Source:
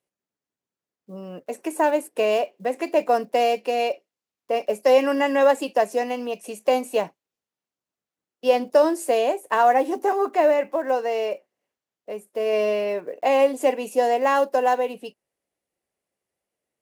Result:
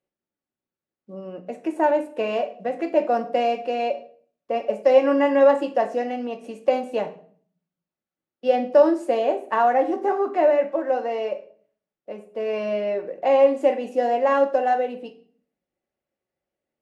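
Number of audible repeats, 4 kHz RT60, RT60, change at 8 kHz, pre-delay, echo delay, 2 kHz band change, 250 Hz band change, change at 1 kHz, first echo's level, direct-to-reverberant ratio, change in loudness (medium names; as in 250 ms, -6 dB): no echo, 0.40 s, 0.50 s, under -10 dB, 3 ms, no echo, -3.0 dB, +2.0 dB, -1.0 dB, no echo, 5.0 dB, 0.0 dB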